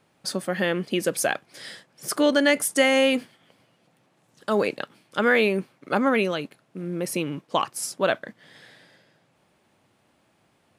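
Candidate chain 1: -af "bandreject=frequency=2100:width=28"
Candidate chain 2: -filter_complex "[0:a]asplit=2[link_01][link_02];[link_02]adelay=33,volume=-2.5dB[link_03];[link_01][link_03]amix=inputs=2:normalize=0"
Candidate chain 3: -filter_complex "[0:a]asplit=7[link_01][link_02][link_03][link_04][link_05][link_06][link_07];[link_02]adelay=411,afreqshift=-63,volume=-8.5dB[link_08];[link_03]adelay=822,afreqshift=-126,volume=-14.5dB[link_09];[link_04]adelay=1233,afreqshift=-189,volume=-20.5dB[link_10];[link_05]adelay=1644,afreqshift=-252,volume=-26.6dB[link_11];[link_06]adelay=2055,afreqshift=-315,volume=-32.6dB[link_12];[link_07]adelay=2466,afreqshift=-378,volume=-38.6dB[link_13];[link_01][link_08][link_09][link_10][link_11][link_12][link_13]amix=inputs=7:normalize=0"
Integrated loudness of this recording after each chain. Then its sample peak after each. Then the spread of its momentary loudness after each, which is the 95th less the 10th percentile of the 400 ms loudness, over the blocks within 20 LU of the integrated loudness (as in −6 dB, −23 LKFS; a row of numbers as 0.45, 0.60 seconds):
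−24.0, −22.5, −24.5 LKFS; −6.5, −4.5, −6.5 dBFS; 16, 17, 14 LU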